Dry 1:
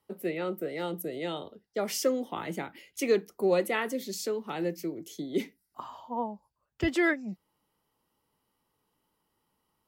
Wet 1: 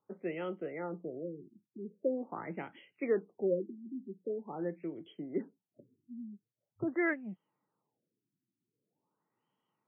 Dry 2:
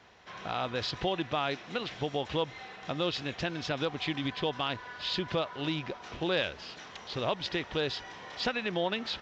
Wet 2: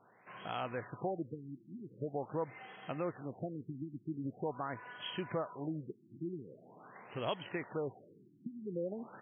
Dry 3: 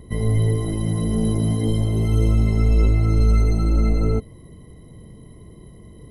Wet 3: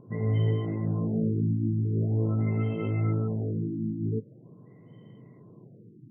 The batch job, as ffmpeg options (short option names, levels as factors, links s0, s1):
-af "afftfilt=real='re*between(b*sr/4096,100,7800)':imag='im*between(b*sr/4096,100,7800)':win_size=4096:overlap=0.75,aexciter=amount=7.5:drive=4.1:freq=3900,afftfilt=real='re*lt(b*sr/1024,350*pow(3400/350,0.5+0.5*sin(2*PI*0.44*pts/sr)))':imag='im*lt(b*sr/1024,350*pow(3400/350,0.5+0.5*sin(2*PI*0.44*pts/sr)))':win_size=1024:overlap=0.75,volume=0.531"